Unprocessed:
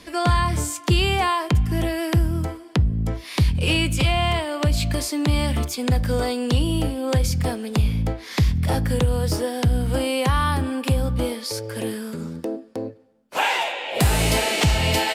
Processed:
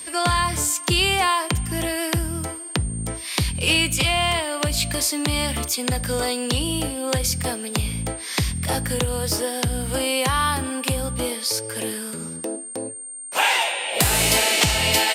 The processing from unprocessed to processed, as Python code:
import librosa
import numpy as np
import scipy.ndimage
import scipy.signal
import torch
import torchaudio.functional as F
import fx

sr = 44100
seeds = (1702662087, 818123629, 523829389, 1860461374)

y = fx.tilt_eq(x, sr, slope=2.0)
y = y + 10.0 ** (-34.0 / 20.0) * np.sin(2.0 * np.pi * 8700.0 * np.arange(len(y)) / sr)
y = y * librosa.db_to_amplitude(1.0)